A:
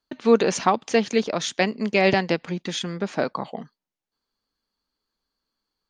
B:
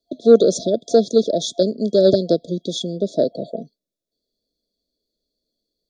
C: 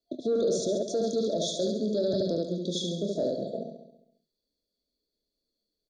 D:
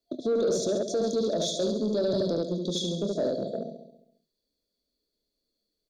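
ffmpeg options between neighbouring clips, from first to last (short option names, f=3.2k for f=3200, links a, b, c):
-filter_complex "[0:a]afftfilt=real='re*(1-between(b*sr/4096,690,3300))':imag='im*(1-between(b*sr/4096,690,3300))':win_size=4096:overlap=0.75,acrossover=split=290|2900[a][b][c];[b]acontrast=76[d];[a][d][c]amix=inputs=3:normalize=0,volume=1.5dB"
-filter_complex "[0:a]asplit=2[a][b];[b]aecho=0:1:24|72:0.398|0.596[c];[a][c]amix=inputs=2:normalize=0,alimiter=limit=-13dB:level=0:latency=1:release=14,asplit=2[d][e];[e]aecho=0:1:136|272|408|544:0.316|0.114|0.041|0.0148[f];[d][f]amix=inputs=2:normalize=0,volume=-7.5dB"
-af "asoftclip=type=tanh:threshold=-19.5dB,volume=2dB"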